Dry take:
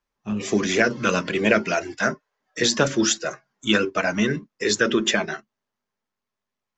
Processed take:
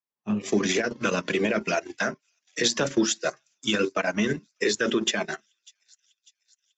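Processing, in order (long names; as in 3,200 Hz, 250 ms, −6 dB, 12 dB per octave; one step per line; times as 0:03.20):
high-pass filter 140 Hz 12 dB per octave
parametric band 1,400 Hz −2.5 dB 0.26 octaves
brickwall limiter −15.5 dBFS, peak gain reduction 10.5 dB
on a send: delay with a high-pass on its return 597 ms, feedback 64%, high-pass 4,200 Hz, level −16.5 dB
on the sum: transient designer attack +3 dB, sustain −12 dB
multiband upward and downward expander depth 40%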